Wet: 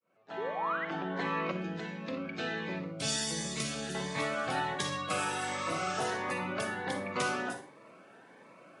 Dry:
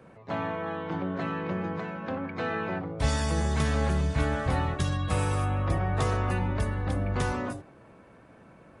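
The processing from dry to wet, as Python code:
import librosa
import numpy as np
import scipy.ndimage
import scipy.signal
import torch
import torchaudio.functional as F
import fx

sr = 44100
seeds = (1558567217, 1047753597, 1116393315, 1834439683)

y = fx.fade_in_head(x, sr, length_s=1.87)
y = fx.spec_repair(y, sr, seeds[0], start_s=5.37, length_s=0.65, low_hz=1200.0, high_hz=8600.0, source='both')
y = scipy.signal.sosfilt(scipy.signal.butter(4, 110.0, 'highpass', fs=sr, output='sos'), y)
y = fx.spec_paint(y, sr, seeds[1], shape='rise', start_s=0.37, length_s=0.48, low_hz=370.0, high_hz=2100.0, level_db=-40.0)
y = fx.peak_eq(y, sr, hz=1000.0, db=-15.0, octaves=2.3, at=(1.51, 3.95))
y = fx.rider(y, sr, range_db=4, speed_s=0.5)
y = fx.weighting(y, sr, curve='A')
y = fx.rev_schroeder(y, sr, rt60_s=0.33, comb_ms=38, drr_db=8.0)
y = fx.notch_cascade(y, sr, direction='rising', hz=1.4)
y = F.gain(torch.from_numpy(y), 4.5).numpy()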